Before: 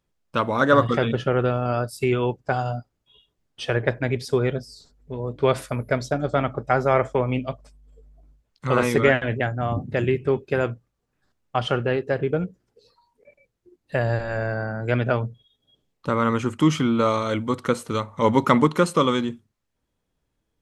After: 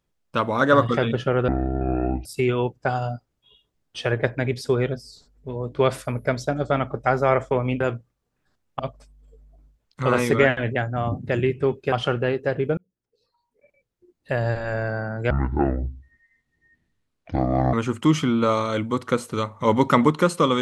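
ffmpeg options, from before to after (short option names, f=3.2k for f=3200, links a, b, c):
-filter_complex "[0:a]asplit=9[a][b][c][d][e][f][g][h][i];[a]atrim=end=1.484[j];[b]atrim=start=1.48:end=1.89,asetpts=PTS-STARTPTS,asetrate=23373,aresample=44100,atrim=end_sample=34115,asetpts=PTS-STARTPTS[k];[c]atrim=start=1.886:end=7.442[l];[d]atrim=start=10.568:end=11.562[m];[e]atrim=start=7.438:end=10.572[n];[f]atrim=start=11.558:end=12.41,asetpts=PTS-STARTPTS,afade=t=out:st=0.848:d=0.004:c=hsin[o];[g]atrim=start=12.41:end=14.944,asetpts=PTS-STARTPTS,afade=t=in:d=1.79[p];[h]atrim=start=14.94:end=16.3,asetpts=PTS-STARTPTS,asetrate=24696,aresample=44100[q];[i]atrim=start=16.296[r];[j][k]acrossfade=d=0.004:c1=hsin:c2=hsin[s];[s][l]acrossfade=d=0.004:c1=hsin:c2=hsin[t];[t][m]acrossfade=d=0.004:c1=hsin:c2=hsin[u];[u][n]acrossfade=d=0.004:c1=hsin:c2=hsin[v];[o][p]concat=n=2:v=0:a=1[w];[v][w]acrossfade=d=0.004:c1=hsin:c2=hsin[x];[x][q]acrossfade=d=0.004:c1=hsin:c2=hsin[y];[y][r]acrossfade=d=0.004:c1=hsin:c2=hsin"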